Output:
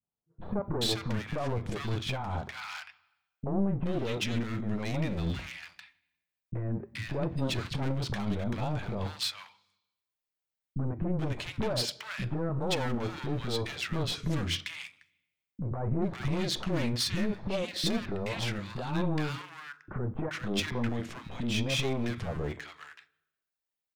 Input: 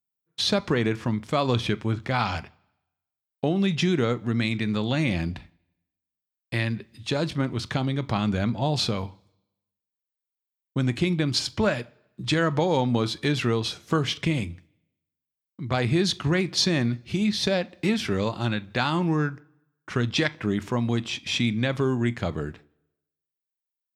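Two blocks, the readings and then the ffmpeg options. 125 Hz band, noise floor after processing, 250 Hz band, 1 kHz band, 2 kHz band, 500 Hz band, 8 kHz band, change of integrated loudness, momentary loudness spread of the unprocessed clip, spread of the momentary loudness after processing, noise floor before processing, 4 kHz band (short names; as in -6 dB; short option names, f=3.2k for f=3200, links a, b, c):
-6.0 dB, under -85 dBFS, -7.5 dB, -8.0 dB, -8.0 dB, -7.5 dB, -5.0 dB, -7.5 dB, 8 LU, 11 LU, under -85 dBFS, -6.0 dB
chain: -filter_complex "[0:a]highshelf=f=4.3k:g=-8.5,asplit=2[a][b];[b]acompressor=threshold=-38dB:ratio=6,volume=-0.5dB[c];[a][c]amix=inputs=2:normalize=0,alimiter=limit=-17dB:level=0:latency=1:release=84,aeval=exprs='clip(val(0),-1,0.0237)':c=same,acrossover=split=280|1200[d][e][f];[e]adelay=30[g];[f]adelay=430[h];[d][g][h]amix=inputs=3:normalize=0"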